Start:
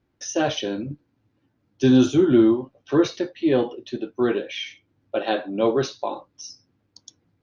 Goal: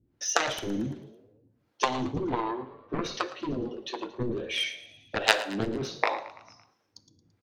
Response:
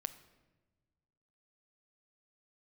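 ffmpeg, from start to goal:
-filter_complex "[0:a]asettb=1/sr,asplit=3[s0][s1][s2];[s0]atrim=end=2.034[s3];[s1]atrim=start=2.03:end=2.99,asetpts=PTS-STARTPTS,afade=t=in:d=0.004:c=qsin,afade=t=out:st=0.956:d=0.004:c=qsin,lowpass=3300[s4];[s2]atrim=start=2.986[s5];[s3][s4]acrossfade=d=0.004:c1=hsin:c2=qsin[s6];[s6][s5]acrossfade=d=0.004:c1=qsin:c2=hsin,acompressor=threshold=0.1:ratio=10,aeval=exprs='0.251*(cos(1*acos(clip(val(0)/0.251,-1,1)))-cos(1*PI/2))+0.126*(cos(3*acos(clip(val(0)/0.251,-1,1)))-cos(3*PI/2))':c=same,acrossover=split=420[s7][s8];[s7]aeval=exprs='val(0)*(1-1/2+1/2*cos(2*PI*1.4*n/s))':c=same[s9];[s8]aeval=exprs='val(0)*(1-1/2-1/2*cos(2*PI*1.4*n/s))':c=same[s10];[s9][s10]amix=inputs=2:normalize=0,asplit=6[s11][s12][s13][s14][s15][s16];[s12]adelay=112,afreqshift=43,volume=0.141[s17];[s13]adelay=224,afreqshift=86,volume=0.0794[s18];[s14]adelay=336,afreqshift=129,volume=0.0442[s19];[s15]adelay=448,afreqshift=172,volume=0.0248[s20];[s16]adelay=560,afreqshift=215,volume=0.014[s21];[s11][s17][s18][s19][s20][s21]amix=inputs=6:normalize=0,asplit=2[s22][s23];[1:a]atrim=start_sample=2205,atrim=end_sample=6615,asetrate=33957,aresample=44100[s24];[s23][s24]afir=irnorm=-1:irlink=0,volume=3.16[s25];[s22][s25]amix=inputs=2:normalize=0,volume=0.794"

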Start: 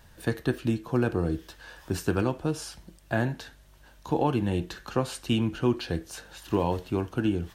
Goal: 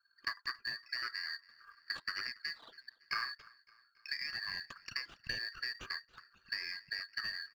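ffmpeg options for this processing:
-filter_complex "[0:a]afftfilt=real='real(if(lt(b,272),68*(eq(floor(b/68),0)*1+eq(floor(b/68),1)*3+eq(floor(b/68),2)*0+eq(floor(b/68),3)*2)+mod(b,68),b),0)':imag='imag(if(lt(b,272),68*(eq(floor(b/68),0)*1+eq(floor(b/68),1)*3+eq(floor(b/68),2)*0+eq(floor(b/68),3)*2)+mod(b,68),b),0)':win_size=2048:overlap=0.75,lowpass=3300,anlmdn=0.631,lowshelf=f=270:g=-10.5,acrossover=split=510[s0][s1];[s1]acompressor=threshold=0.00794:ratio=6[s2];[s0][s2]amix=inputs=2:normalize=0,aeval=exprs='val(0)*sin(2*PI*1400*n/s)':c=same,acrusher=bits=7:mode=log:mix=0:aa=0.000001,aphaser=in_gain=1:out_gain=1:delay=4.6:decay=0.26:speed=1.3:type=triangular,asplit=2[s3][s4];[s4]aecho=0:1:280|560|840|1120:0.0631|0.036|0.0205|0.0117[s5];[s3][s5]amix=inputs=2:normalize=0,volume=2"

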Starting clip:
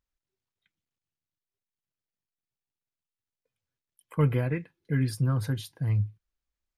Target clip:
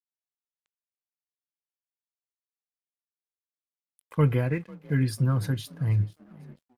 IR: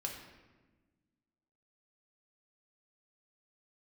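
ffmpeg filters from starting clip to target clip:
-filter_complex "[0:a]asplit=5[s0][s1][s2][s3][s4];[s1]adelay=495,afreqshift=39,volume=0.0794[s5];[s2]adelay=990,afreqshift=78,volume=0.0427[s6];[s3]adelay=1485,afreqshift=117,volume=0.0232[s7];[s4]adelay=1980,afreqshift=156,volume=0.0124[s8];[s0][s5][s6][s7][s8]amix=inputs=5:normalize=0,aeval=exprs='sgn(val(0))*max(abs(val(0))-0.00141,0)':c=same,volume=1.26"

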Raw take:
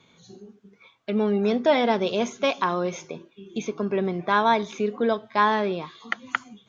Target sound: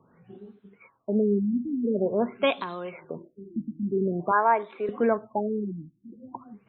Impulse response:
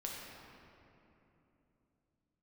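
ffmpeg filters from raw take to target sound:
-filter_complex "[0:a]asettb=1/sr,asplit=3[s0][s1][s2];[s0]atrim=end=2.604[s3];[s1]atrim=start=2.6:end=3.1,asetpts=PTS-STARTPTS,afade=t=in:d=0.004:c=qsin,afade=t=out:st=0.496:d=0.004:c=qsin,acrossover=split=480|2700[s4][s5][s6];[s4]acompressor=threshold=0.00891:ratio=4[s7];[s5]acompressor=threshold=0.0178:ratio=4[s8];[s6]acompressor=threshold=0.00447:ratio=4[s9];[s7][s8][s9]amix=inputs=3:normalize=0[s10];[s2]atrim=start=3.096[s11];[s3][s10]acrossfade=d=0.004:c1=hsin:c2=qsin[s12];[s12][s11]acrossfade=d=0.004:c1=qsin:c2=hsin,asettb=1/sr,asplit=3[s13][s14][s15];[s13]atrim=end=4.314[s16];[s14]atrim=start=4.31:end=4.89,asetpts=PTS-STARTPTS,afade=t=in:d=0.004:c=qsin,afade=t=out:st=0.576:d=0.004:c=qsin,acrossover=split=360 2100:gain=0.0891 1 0.0891[s17][s18][s19];[s17][s18][s19]amix=inputs=3:normalize=0[s20];[s15]atrim=start=4.886[s21];[s16][s20]acrossfade=d=0.004:c1=hsin:c2=qsin[s22];[s22][s21]acrossfade=d=0.004:c1=qsin:c2=hsin,afftfilt=real='re*lt(b*sr/1024,310*pow(4300/310,0.5+0.5*sin(2*PI*0.47*pts/sr)))':imag='im*lt(b*sr/1024,310*pow(4300/310,0.5+0.5*sin(2*PI*0.47*pts/sr)))':win_size=1024:overlap=0.75"

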